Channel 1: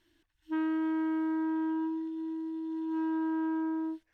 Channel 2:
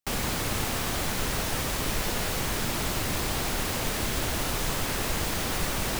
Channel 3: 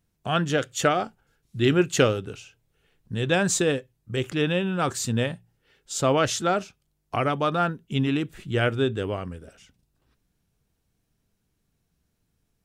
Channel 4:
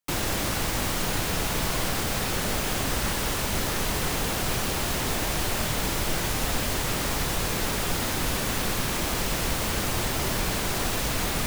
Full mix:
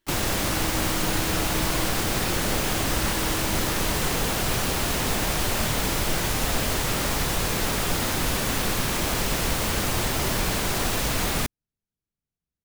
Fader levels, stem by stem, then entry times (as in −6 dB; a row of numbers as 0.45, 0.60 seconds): −6.0, −10.5, −19.0, +2.0 decibels; 0.00, 0.00, 0.50, 0.00 seconds